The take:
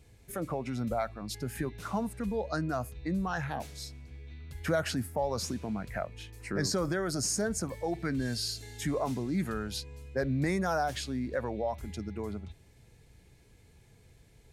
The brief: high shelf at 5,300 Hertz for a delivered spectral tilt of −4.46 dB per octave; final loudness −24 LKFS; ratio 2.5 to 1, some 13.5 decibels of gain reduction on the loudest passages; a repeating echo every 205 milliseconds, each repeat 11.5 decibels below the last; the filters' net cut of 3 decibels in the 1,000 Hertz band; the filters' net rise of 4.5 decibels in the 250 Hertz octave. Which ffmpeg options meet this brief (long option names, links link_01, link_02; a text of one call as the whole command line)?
ffmpeg -i in.wav -af "equalizer=frequency=250:width_type=o:gain=6,equalizer=frequency=1000:width_type=o:gain=-5.5,highshelf=frequency=5300:gain=7,acompressor=threshold=-45dB:ratio=2.5,aecho=1:1:205|410|615:0.266|0.0718|0.0194,volume=18.5dB" out.wav